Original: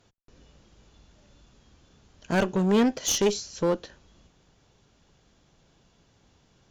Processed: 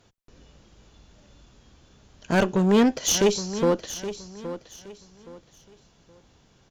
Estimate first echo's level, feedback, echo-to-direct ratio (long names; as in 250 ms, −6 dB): −12.5 dB, 28%, −12.0 dB